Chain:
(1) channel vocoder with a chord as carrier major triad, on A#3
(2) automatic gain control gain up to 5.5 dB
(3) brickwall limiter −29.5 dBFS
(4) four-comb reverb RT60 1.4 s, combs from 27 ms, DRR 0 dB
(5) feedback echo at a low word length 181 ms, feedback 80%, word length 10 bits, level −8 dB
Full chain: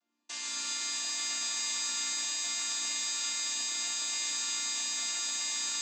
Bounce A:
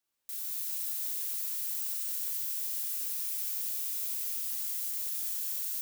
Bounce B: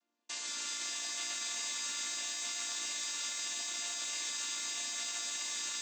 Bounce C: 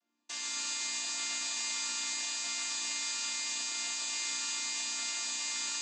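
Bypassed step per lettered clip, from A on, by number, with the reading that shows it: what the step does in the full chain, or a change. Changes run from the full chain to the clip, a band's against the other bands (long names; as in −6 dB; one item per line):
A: 1, change in crest factor +2.0 dB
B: 4, 500 Hz band +4.5 dB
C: 5, 8 kHz band −2.0 dB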